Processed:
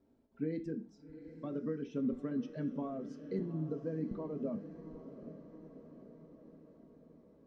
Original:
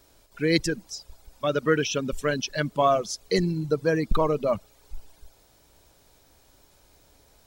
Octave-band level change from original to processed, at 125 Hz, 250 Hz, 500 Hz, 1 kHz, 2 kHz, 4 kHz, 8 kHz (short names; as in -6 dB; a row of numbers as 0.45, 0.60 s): -12.0 dB, -8.0 dB, -16.5 dB, -24.5 dB, -28.5 dB, under -30 dB, under -35 dB